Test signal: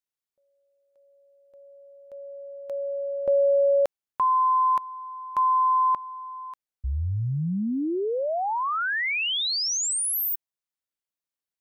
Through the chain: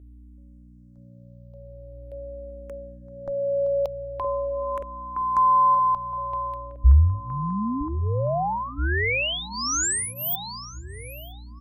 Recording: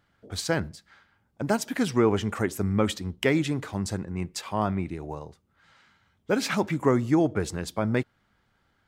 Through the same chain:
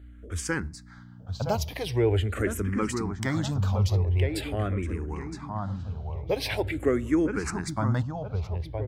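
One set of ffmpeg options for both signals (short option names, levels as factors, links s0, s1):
-filter_complex "[0:a]lowshelf=f=110:t=q:w=1.5:g=13.5,asplit=2[s0][s1];[s1]acompressor=threshold=0.0282:ratio=6:attack=7.2:release=253:knee=1:detection=peak,volume=0.944[s2];[s0][s2]amix=inputs=2:normalize=0,aeval=exprs='val(0)+0.00794*(sin(2*PI*60*n/s)+sin(2*PI*2*60*n/s)/2+sin(2*PI*3*60*n/s)/3+sin(2*PI*4*60*n/s)/4+sin(2*PI*5*60*n/s)/5)':c=same,asplit=2[s3][s4];[s4]adelay=967,lowpass=f=2000:p=1,volume=0.501,asplit=2[s5][s6];[s6]adelay=967,lowpass=f=2000:p=1,volume=0.45,asplit=2[s7][s8];[s8]adelay=967,lowpass=f=2000:p=1,volume=0.45,asplit=2[s9][s10];[s10]adelay=967,lowpass=f=2000:p=1,volume=0.45,asplit=2[s11][s12];[s12]adelay=967,lowpass=f=2000:p=1,volume=0.45[s13];[s3][s5][s7][s9][s11][s13]amix=inputs=6:normalize=0,asplit=2[s14][s15];[s15]afreqshift=-0.44[s16];[s14][s16]amix=inputs=2:normalize=1,volume=0.841"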